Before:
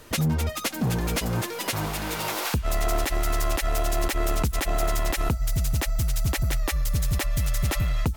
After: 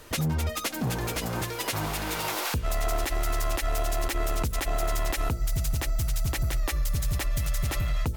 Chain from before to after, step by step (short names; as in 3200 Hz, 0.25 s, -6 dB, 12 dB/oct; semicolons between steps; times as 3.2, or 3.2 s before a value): bell 190 Hz -4 dB 0.65 oct; de-hum 57.97 Hz, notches 11; limiter -20.5 dBFS, peak gain reduction 5.5 dB